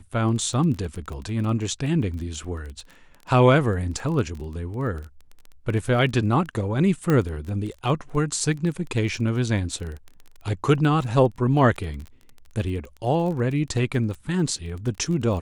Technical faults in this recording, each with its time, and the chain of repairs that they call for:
crackle 21 per s -31 dBFS
7.10 s: pop -10 dBFS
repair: de-click

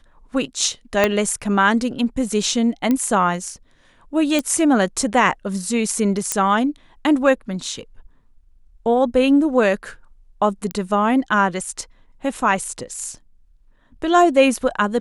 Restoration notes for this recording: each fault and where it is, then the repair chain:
1.04 s: pop -2 dBFS
2.91 s: pop -8 dBFS
4.39 s: pop
6.32 s: pop -4 dBFS
10.71 s: pop -11 dBFS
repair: de-click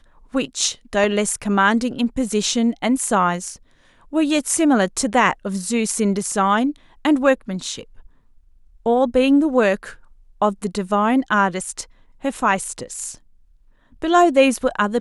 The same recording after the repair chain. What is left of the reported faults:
1.04 s: pop

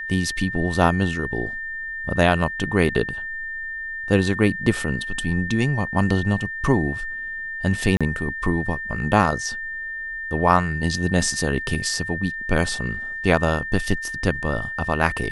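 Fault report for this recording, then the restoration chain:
whine 1.8 kHz -28 dBFS
7.97–8.01 s: dropout 36 ms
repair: band-stop 1.8 kHz, Q 30; interpolate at 7.97 s, 36 ms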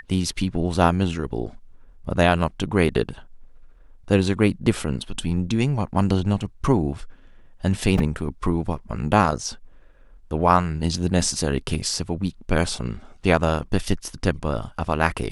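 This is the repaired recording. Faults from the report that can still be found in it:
nothing left

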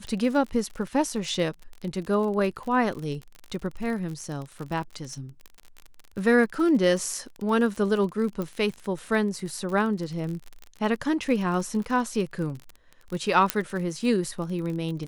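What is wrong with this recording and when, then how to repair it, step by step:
crackle 39 per s -32 dBFS
8.42 s: pop -19 dBFS
13.50 s: pop -4 dBFS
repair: de-click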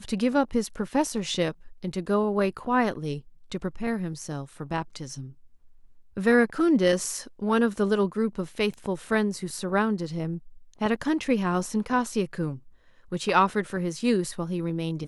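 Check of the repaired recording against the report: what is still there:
nothing left

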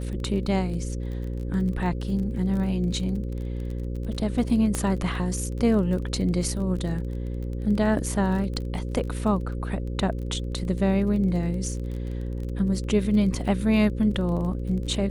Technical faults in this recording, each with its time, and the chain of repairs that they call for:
buzz 60 Hz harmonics 9 -30 dBFS
crackle 25 per s -33 dBFS
4.75 s: pop -13 dBFS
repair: de-click; de-hum 60 Hz, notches 9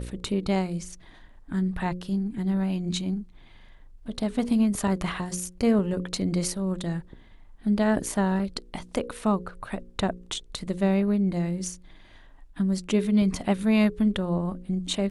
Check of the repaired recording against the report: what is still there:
nothing left

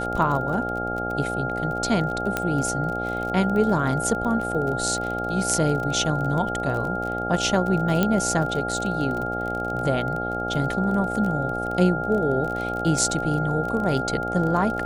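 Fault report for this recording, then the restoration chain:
buzz 60 Hz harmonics 14 -30 dBFS
crackle 25 per s -28 dBFS
whine 1.4 kHz -28 dBFS
2.37 s: pop -9 dBFS
8.03 s: pop -8 dBFS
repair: de-click; de-hum 60 Hz, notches 14; band-stop 1.4 kHz, Q 30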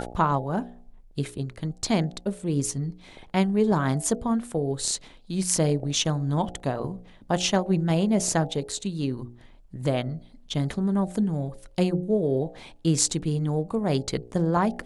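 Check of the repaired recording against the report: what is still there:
2.37 s: pop

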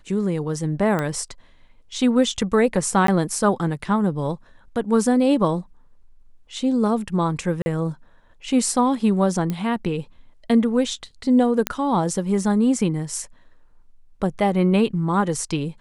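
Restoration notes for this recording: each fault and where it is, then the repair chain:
0.99 s: pop -12 dBFS
3.07–3.08 s: dropout 13 ms
7.62–7.66 s: dropout 40 ms
9.50 s: pop -13 dBFS
11.67 s: pop -4 dBFS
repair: de-click; interpolate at 3.07 s, 13 ms; interpolate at 7.62 s, 40 ms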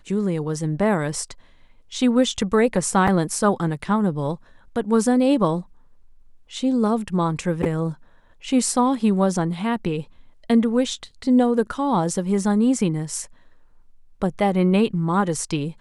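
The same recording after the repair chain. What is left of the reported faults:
nothing left

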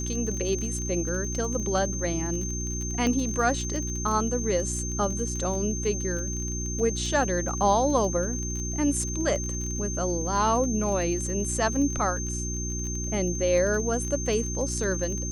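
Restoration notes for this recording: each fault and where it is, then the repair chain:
crackle 25 per s -31 dBFS
hum 60 Hz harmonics 6 -32 dBFS
whine 6.3 kHz -33 dBFS
3.07 s: pop -16 dBFS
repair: de-click; band-stop 6.3 kHz, Q 30; de-hum 60 Hz, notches 6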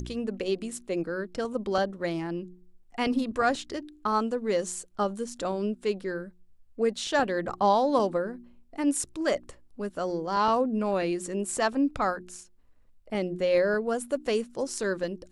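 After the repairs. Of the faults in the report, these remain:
nothing left

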